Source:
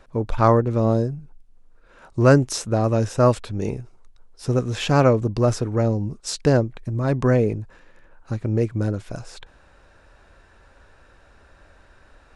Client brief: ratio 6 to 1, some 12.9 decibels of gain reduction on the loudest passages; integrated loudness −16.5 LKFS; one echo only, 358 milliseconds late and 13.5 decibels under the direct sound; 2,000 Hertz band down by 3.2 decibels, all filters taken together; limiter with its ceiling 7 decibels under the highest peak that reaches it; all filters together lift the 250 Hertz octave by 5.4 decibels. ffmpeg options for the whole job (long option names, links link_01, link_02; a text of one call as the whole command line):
ffmpeg -i in.wav -af "equalizer=frequency=250:width_type=o:gain=6.5,equalizer=frequency=2000:width_type=o:gain=-5,acompressor=threshold=-21dB:ratio=6,alimiter=limit=-18.5dB:level=0:latency=1,aecho=1:1:358:0.211,volume=12.5dB" out.wav